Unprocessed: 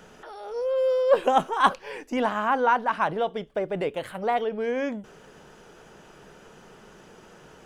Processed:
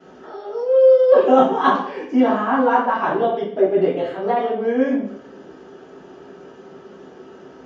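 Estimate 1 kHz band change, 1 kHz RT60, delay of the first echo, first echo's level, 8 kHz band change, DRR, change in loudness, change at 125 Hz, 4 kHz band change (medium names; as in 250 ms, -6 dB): +4.5 dB, 0.55 s, no echo, no echo, no reading, -13.5 dB, +8.0 dB, +5.0 dB, +0.5 dB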